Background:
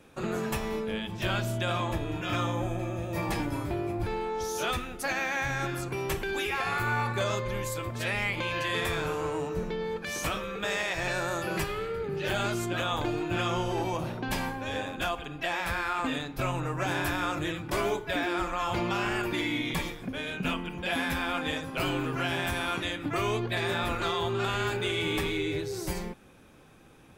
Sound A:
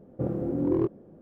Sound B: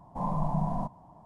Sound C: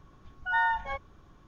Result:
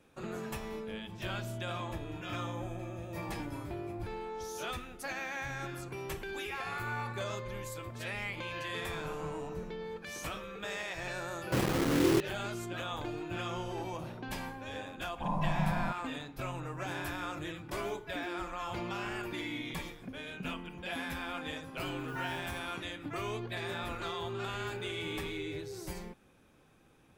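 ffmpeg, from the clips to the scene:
ffmpeg -i bed.wav -i cue0.wav -i cue1.wav -i cue2.wav -filter_complex "[2:a]asplit=2[link_01][link_02];[0:a]volume=-8.5dB[link_03];[1:a]acrusher=bits=4:mix=0:aa=0.000001[link_04];[3:a]acrusher=bits=6:mix=0:aa=0.000001[link_05];[link_01]atrim=end=1.25,asetpts=PTS-STARTPTS,volume=-18dB,afade=type=in:duration=0.004:curve=hsin,afade=type=out:start_time=1.246:duration=0.004:curve=hsin,adelay=8690[link_06];[link_04]atrim=end=1.21,asetpts=PTS-STARTPTS,volume=-2dB,afade=type=in:duration=0.004:curve=hsin,afade=type=out:start_time=1.206:duration=0.004:curve=hsin,adelay=11330[link_07];[link_02]atrim=end=1.25,asetpts=PTS-STARTPTS,volume=-2.5dB,afade=type=in:duration=0.004:curve=hsin,afade=type=out:start_time=1.246:duration=0.004:curve=hsin,adelay=15050[link_08];[link_05]atrim=end=1.47,asetpts=PTS-STARTPTS,volume=-16dB,afade=type=in:duration=0.004:curve=hsin,afade=type=out:start_time=1.466:duration=0.004:curve=hsin,adelay=21620[link_09];[link_03][link_06][link_07][link_08][link_09]amix=inputs=5:normalize=0" out.wav

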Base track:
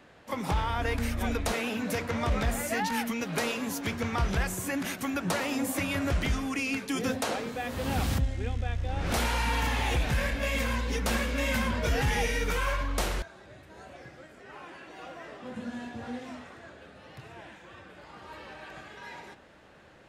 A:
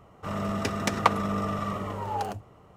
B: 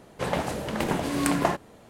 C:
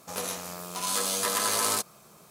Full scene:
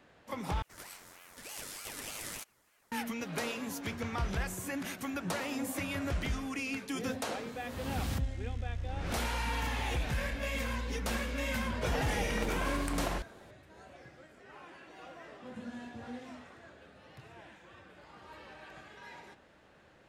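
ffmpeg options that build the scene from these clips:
ffmpeg -i bed.wav -i cue0.wav -i cue1.wav -i cue2.wav -filter_complex "[0:a]volume=-6dB[link_01];[3:a]aeval=exprs='val(0)*sin(2*PI*1300*n/s+1300*0.45/3.3*sin(2*PI*3.3*n/s))':channel_layout=same[link_02];[2:a]acompressor=threshold=-27dB:ratio=6:attack=3.2:release=140:knee=1:detection=peak[link_03];[link_01]asplit=2[link_04][link_05];[link_04]atrim=end=0.624[link_06];[link_02]atrim=end=2.3,asetpts=PTS-STARTPTS,volume=-13dB[link_07];[link_05]atrim=start=2.916[link_08];[link_03]atrim=end=1.89,asetpts=PTS-STARTPTS,volume=-5dB,afade=type=in:duration=0.004:curve=hsin,afade=type=out:start_time=1.886:duration=0.004:curve=hsin,adelay=512442S[link_09];[link_06][link_07]acrossfade=duration=0.004:curve1=hsin:curve2=hsin[link_10];[link_10][link_08]acrossfade=duration=0.004:curve1=hsin:curve2=hsin[link_11];[link_11][link_09]amix=inputs=2:normalize=0" out.wav

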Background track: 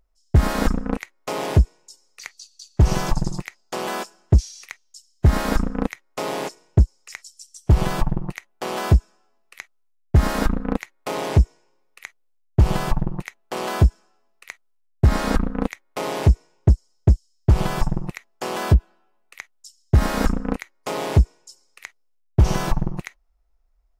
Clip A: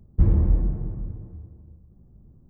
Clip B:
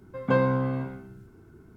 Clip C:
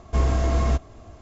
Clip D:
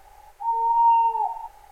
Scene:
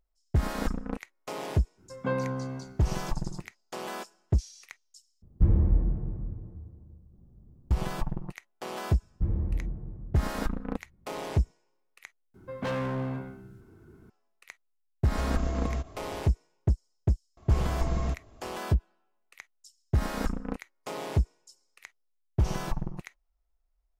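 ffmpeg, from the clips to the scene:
ffmpeg -i bed.wav -i cue0.wav -i cue1.wav -i cue2.wav -filter_complex "[2:a]asplit=2[link_01][link_02];[1:a]asplit=2[link_03][link_04];[3:a]asplit=2[link_05][link_06];[0:a]volume=-10dB[link_07];[link_02]asoftclip=type=hard:threshold=-26.5dB[link_08];[link_05]acompressor=threshold=-25dB:ratio=6:attack=3.2:release=140:knee=1:detection=peak[link_09];[link_07]asplit=3[link_10][link_11][link_12];[link_10]atrim=end=5.224[link_13];[link_03]atrim=end=2.49,asetpts=PTS-STARTPTS,volume=-3.5dB[link_14];[link_11]atrim=start=7.706:end=12.344[link_15];[link_08]atrim=end=1.76,asetpts=PTS-STARTPTS,volume=-2dB[link_16];[link_12]atrim=start=14.096[link_17];[link_01]atrim=end=1.76,asetpts=PTS-STARTPTS,volume=-7dB,afade=type=in:duration=0.05,afade=type=out:start_time=1.71:duration=0.05,adelay=1760[link_18];[link_04]atrim=end=2.49,asetpts=PTS-STARTPTS,volume=-10dB,afade=type=in:duration=0.004:curve=hsin,afade=type=out:start_time=2.486:duration=0.004:curve=hsin,adelay=9020[link_19];[link_09]atrim=end=1.21,asetpts=PTS-STARTPTS,volume=-2dB,afade=type=in:duration=0.004:curve=hsin,afade=type=out:start_time=1.206:duration=0.004:curve=hsin,adelay=15050[link_20];[link_06]atrim=end=1.21,asetpts=PTS-STARTPTS,volume=-9dB,afade=type=in:duration=0.004:curve=hsin,afade=type=out:start_time=1.206:duration=0.004:curve=hsin,adelay=17370[link_21];[link_13][link_14]acrossfade=duration=0.004:curve1=hsin:curve2=hsin[link_22];[link_22][link_15]acrossfade=duration=0.004:curve1=hsin:curve2=hsin[link_23];[link_23][link_16]acrossfade=duration=0.004:curve1=hsin:curve2=hsin[link_24];[link_24][link_17]acrossfade=duration=0.004:curve1=hsin:curve2=hsin[link_25];[link_25][link_18][link_19][link_20][link_21]amix=inputs=5:normalize=0" out.wav

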